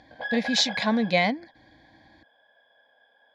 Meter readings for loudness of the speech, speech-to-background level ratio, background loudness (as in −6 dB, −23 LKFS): −24.5 LKFS, 10.0 dB, −34.5 LKFS